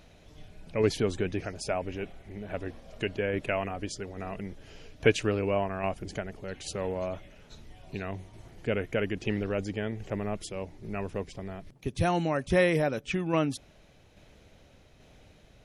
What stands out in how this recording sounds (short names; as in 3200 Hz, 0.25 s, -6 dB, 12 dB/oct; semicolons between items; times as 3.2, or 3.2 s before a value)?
tremolo saw down 1.2 Hz, depth 35%